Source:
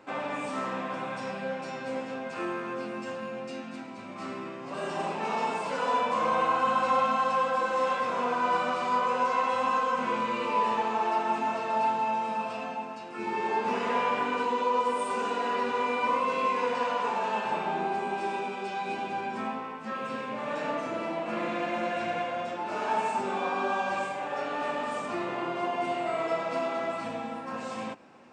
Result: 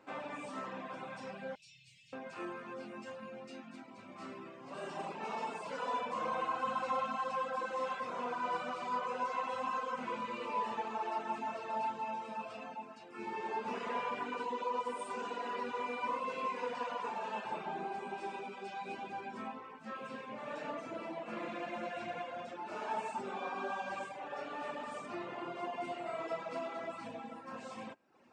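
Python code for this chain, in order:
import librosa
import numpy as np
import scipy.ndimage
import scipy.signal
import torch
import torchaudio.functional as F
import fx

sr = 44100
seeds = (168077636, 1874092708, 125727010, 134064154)

y = fx.cheby2_bandstop(x, sr, low_hz=230.0, high_hz=1500.0, order=4, stop_db=40, at=(1.55, 2.13))
y = fx.comb_fb(y, sr, f0_hz=320.0, decay_s=0.62, harmonics='all', damping=0.0, mix_pct=40)
y = fx.dereverb_blind(y, sr, rt60_s=0.68)
y = y * 10.0 ** (-4.0 / 20.0)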